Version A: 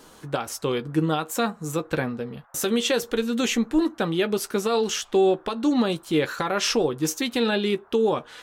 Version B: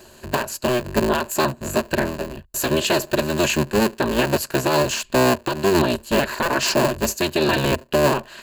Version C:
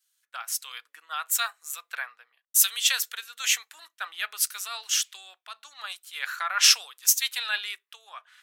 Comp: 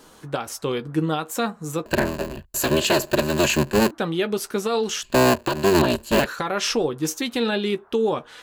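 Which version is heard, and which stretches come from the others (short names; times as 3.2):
A
1.86–3.91 from B
5.03–6.26 from B
not used: C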